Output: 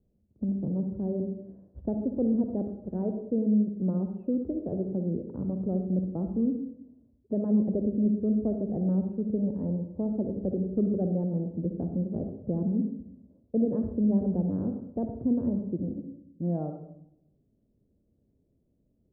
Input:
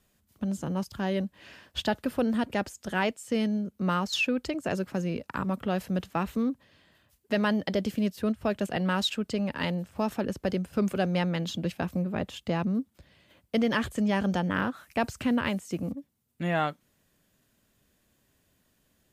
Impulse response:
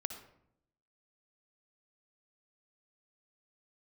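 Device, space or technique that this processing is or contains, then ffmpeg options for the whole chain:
next room: -filter_complex "[0:a]lowpass=f=500:w=0.5412,lowpass=f=500:w=1.3066[s0];[1:a]atrim=start_sample=2205[s1];[s0][s1]afir=irnorm=-1:irlink=0,volume=1.19"

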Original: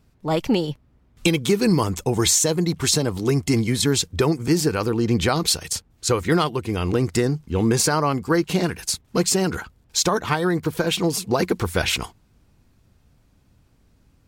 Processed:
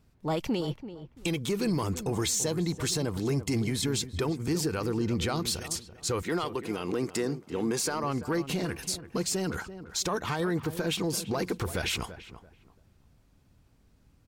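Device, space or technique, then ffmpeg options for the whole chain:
soft clipper into limiter: -filter_complex "[0:a]asettb=1/sr,asplit=3[s0][s1][s2];[s0]atrim=end=6.224[s3];[s1]atrim=start=6.22:end=8.04,asetpts=PTS-STARTPTS,afade=t=in:d=0.004:c=qsin,afade=t=out:st=1.816:d=0.004:c=qsin,highpass=220[s4];[s2]atrim=start=8.036[s5];[s3][s4]acrossfade=d=0.004:c1=hsin:c2=qsin[s6];[s6][s5]acrossfade=d=0.004:c1=qsin:c2=hsin,asoftclip=type=tanh:threshold=0.316,alimiter=limit=0.141:level=0:latency=1:release=59,asplit=2[s7][s8];[s8]adelay=337,lowpass=f=1500:p=1,volume=0.251,asplit=2[s9][s10];[s10]adelay=337,lowpass=f=1500:p=1,volume=0.26,asplit=2[s11][s12];[s12]adelay=337,lowpass=f=1500:p=1,volume=0.26[s13];[s7][s9][s11][s13]amix=inputs=4:normalize=0,volume=0.596"

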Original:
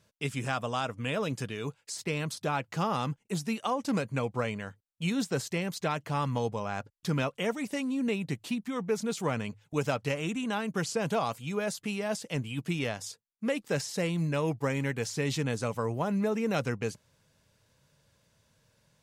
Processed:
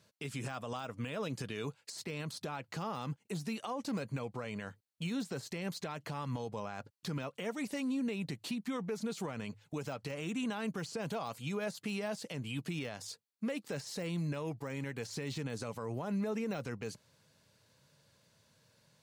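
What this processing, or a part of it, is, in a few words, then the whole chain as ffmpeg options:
broadcast voice chain: -af "highpass=100,deesser=1,acompressor=threshold=0.0251:ratio=3,equalizer=f=4300:t=o:w=0.21:g=6,alimiter=level_in=1.78:limit=0.0631:level=0:latency=1:release=71,volume=0.562"

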